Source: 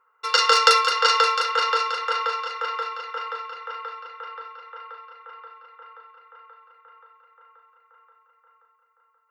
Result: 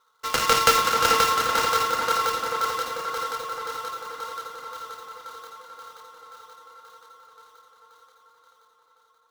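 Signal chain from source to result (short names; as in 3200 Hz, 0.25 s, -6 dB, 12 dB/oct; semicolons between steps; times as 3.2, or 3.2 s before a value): switching dead time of 0.13 ms; tape echo 0.439 s, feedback 71%, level -3 dB, low-pass 1900 Hz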